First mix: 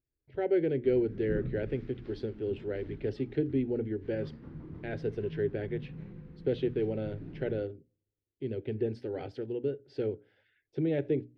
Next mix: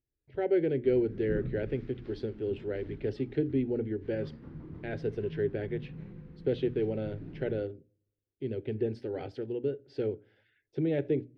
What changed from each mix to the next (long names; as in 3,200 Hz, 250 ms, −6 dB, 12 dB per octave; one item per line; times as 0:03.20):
speech: send +6.5 dB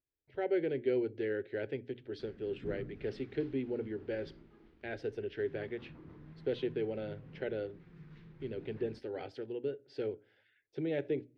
background: entry +1.35 s
master: add low-shelf EQ 360 Hz −11 dB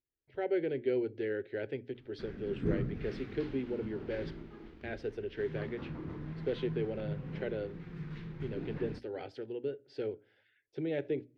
background +11.0 dB